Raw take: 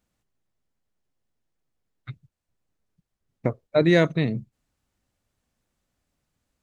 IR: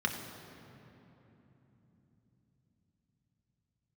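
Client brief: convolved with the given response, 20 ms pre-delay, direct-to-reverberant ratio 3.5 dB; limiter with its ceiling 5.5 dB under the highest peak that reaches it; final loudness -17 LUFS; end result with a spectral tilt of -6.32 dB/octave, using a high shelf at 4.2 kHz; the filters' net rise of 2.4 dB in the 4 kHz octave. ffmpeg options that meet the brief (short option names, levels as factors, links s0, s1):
-filter_complex "[0:a]equalizer=f=4000:t=o:g=6,highshelf=f=4200:g=-7.5,alimiter=limit=0.266:level=0:latency=1,asplit=2[s0][s1];[1:a]atrim=start_sample=2205,adelay=20[s2];[s1][s2]afir=irnorm=-1:irlink=0,volume=0.299[s3];[s0][s3]amix=inputs=2:normalize=0,volume=2.66"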